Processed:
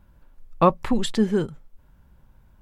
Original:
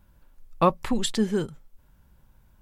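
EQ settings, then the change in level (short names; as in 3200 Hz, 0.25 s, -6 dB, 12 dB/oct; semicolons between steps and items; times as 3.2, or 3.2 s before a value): high shelf 3400 Hz -8.5 dB; +3.5 dB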